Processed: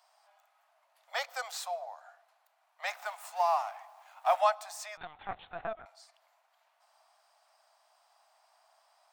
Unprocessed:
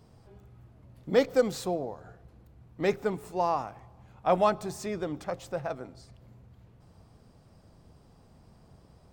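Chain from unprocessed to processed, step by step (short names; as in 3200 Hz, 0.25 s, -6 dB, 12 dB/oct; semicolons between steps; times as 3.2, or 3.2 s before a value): 2.87–4.41 G.711 law mismatch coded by mu; steep high-pass 640 Hz 72 dB/oct; 4.97–5.86 LPC vocoder at 8 kHz pitch kept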